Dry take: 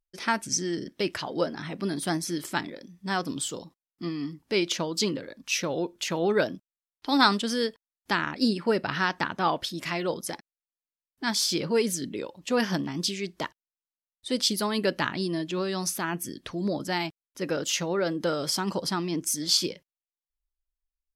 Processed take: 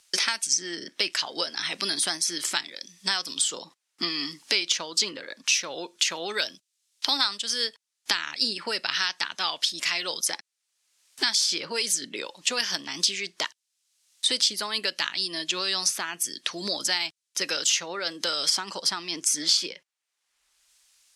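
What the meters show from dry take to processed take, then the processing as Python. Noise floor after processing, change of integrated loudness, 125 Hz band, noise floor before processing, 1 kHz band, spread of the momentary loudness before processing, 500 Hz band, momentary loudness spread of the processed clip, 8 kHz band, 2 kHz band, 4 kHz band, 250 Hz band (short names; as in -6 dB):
-82 dBFS, +2.5 dB, -15.5 dB, under -85 dBFS, -5.0 dB, 10 LU, -8.0 dB, 7 LU, +6.0 dB, +1.5 dB, +7.0 dB, -11.5 dB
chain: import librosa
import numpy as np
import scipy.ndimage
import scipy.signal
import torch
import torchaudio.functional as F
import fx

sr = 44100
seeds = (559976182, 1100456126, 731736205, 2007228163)

y = fx.weighting(x, sr, curve='ITU-R 468')
y = fx.band_squash(y, sr, depth_pct=100)
y = F.gain(torch.from_numpy(y), -3.5).numpy()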